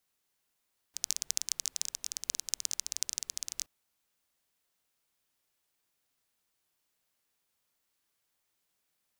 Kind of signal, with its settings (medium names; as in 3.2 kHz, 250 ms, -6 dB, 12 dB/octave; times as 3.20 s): rain from filtered ticks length 2.72 s, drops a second 18, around 6.1 kHz, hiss -28 dB